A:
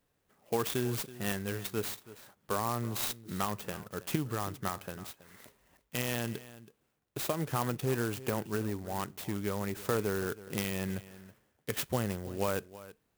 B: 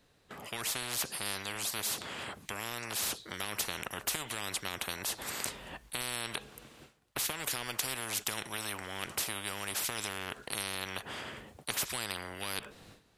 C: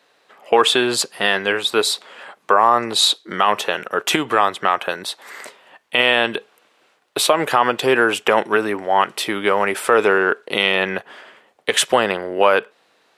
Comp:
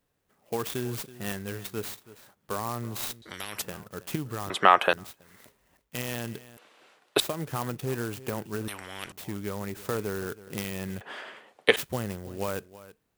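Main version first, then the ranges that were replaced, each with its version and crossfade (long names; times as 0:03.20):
A
0:03.22–0:03.62: punch in from B
0:04.50–0:04.93: punch in from C
0:06.57–0:07.20: punch in from C
0:08.68–0:09.12: punch in from B
0:11.01–0:11.76: punch in from C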